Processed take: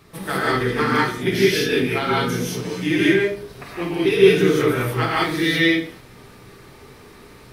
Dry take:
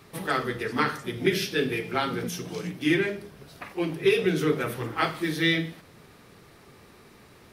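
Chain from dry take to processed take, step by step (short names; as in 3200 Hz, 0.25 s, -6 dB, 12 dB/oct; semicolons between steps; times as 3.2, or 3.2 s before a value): low shelf 84 Hz +8.5 dB; non-linear reverb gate 0.22 s rising, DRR -6.5 dB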